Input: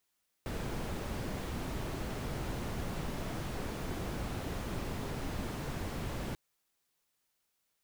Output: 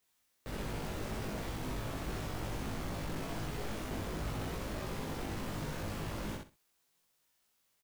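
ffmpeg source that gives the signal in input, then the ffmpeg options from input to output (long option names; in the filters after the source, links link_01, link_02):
-f lavfi -i "anoisesrc=color=brown:amplitude=0.0661:duration=5.89:sample_rate=44100:seed=1"
-filter_complex "[0:a]asoftclip=type=tanh:threshold=-38.5dB,asplit=2[link_01][link_02];[link_02]adelay=19,volume=-2dB[link_03];[link_01][link_03]amix=inputs=2:normalize=0,asplit=2[link_04][link_05];[link_05]aecho=0:1:63|126|189:0.668|0.14|0.0295[link_06];[link_04][link_06]amix=inputs=2:normalize=0"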